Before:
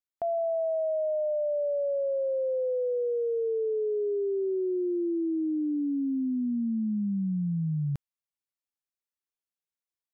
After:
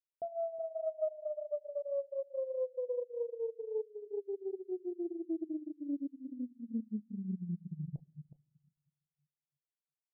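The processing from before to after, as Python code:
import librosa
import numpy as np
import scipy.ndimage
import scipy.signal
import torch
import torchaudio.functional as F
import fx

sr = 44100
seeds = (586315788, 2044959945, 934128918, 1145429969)

y = fx.highpass(x, sr, hz=120.0, slope=24, at=(2.78, 5.06), fade=0.02)
y = fx.room_shoebox(y, sr, seeds[0], volume_m3=360.0, walls='mixed', distance_m=0.62)
y = fx.dereverb_blind(y, sr, rt60_s=0.61)
y = scipy.signal.sosfilt(scipy.signal.butter(8, 720.0, 'lowpass', fs=sr, output='sos'), y)
y = fx.low_shelf(y, sr, hz=160.0, db=8.5)
y = y + 10.0 ** (-12.0 / 20.0) * np.pad(y, (int(368 * sr / 1000.0), 0))[:len(y)]
y = fx.dereverb_blind(y, sr, rt60_s=0.9)
y = fx.tilt_eq(y, sr, slope=4.0)
y = fx.doppler_dist(y, sr, depth_ms=0.13)
y = y * librosa.db_to_amplitude(-4.5)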